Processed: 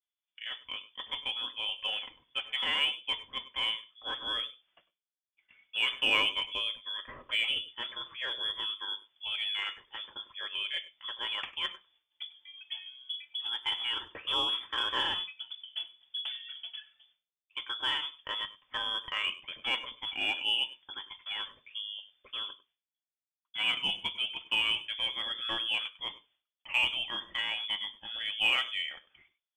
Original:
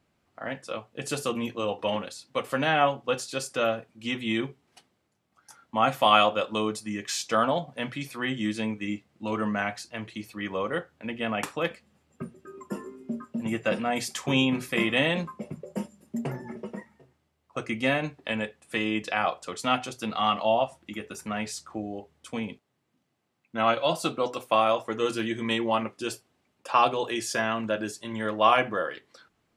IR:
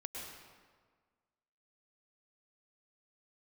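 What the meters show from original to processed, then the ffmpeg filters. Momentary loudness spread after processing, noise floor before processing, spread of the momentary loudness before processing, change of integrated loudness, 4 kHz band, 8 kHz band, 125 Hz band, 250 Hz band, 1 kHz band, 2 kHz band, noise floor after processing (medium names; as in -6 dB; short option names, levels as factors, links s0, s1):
13 LU, -74 dBFS, 15 LU, -4.0 dB, +5.5 dB, under -15 dB, under -20 dB, -24.0 dB, -14.5 dB, -2.5 dB, under -85 dBFS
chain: -filter_complex "[0:a]lowpass=f=3100:t=q:w=0.5098,lowpass=f=3100:t=q:w=0.6013,lowpass=f=3100:t=q:w=0.9,lowpass=f=3100:t=q:w=2.563,afreqshift=-3600,agate=range=0.0224:threshold=0.00112:ratio=3:detection=peak,lowshelf=f=170:g=6,asplit=2[s0][s1];[s1]asoftclip=type=tanh:threshold=0.0841,volume=0.447[s2];[s0][s2]amix=inputs=2:normalize=0[s3];[1:a]atrim=start_sample=2205,atrim=end_sample=4410[s4];[s3][s4]afir=irnorm=-1:irlink=0,volume=0.631"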